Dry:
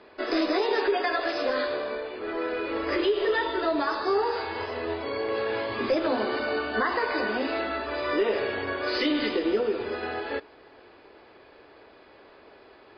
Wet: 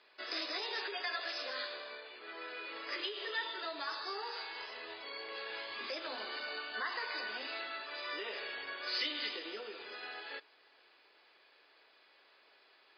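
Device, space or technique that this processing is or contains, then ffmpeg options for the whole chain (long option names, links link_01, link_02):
piezo pickup straight into a mixer: -af "lowpass=5300,aderivative,volume=3dB"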